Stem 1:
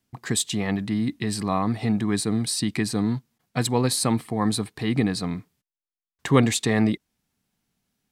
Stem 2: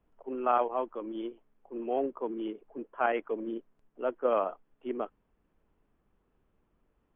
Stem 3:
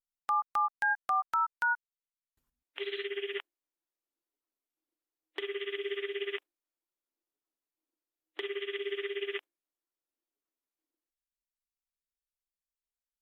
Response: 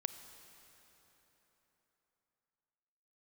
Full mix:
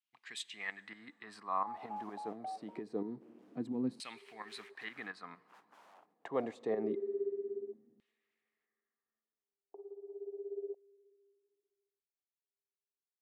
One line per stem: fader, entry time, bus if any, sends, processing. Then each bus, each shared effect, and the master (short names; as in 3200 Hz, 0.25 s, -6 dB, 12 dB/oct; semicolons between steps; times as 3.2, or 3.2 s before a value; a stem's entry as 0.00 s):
-6.0 dB, 0.00 s, send -8.5 dB, tremolo saw up 4.3 Hz, depth 65%
-11.5 dB, 1.50 s, no send, spectral contrast lowered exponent 0.22; wrapped overs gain 25 dB; limiter -31.5 dBFS, peak gain reduction 6.5 dB
0.0 dB, 1.35 s, send -15.5 dB, steep low-pass 750 Hz 48 dB/oct; gate with hold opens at -52 dBFS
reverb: on, RT60 4.0 s, pre-delay 28 ms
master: HPF 170 Hz 12 dB/oct; LFO band-pass saw down 0.25 Hz 220–3000 Hz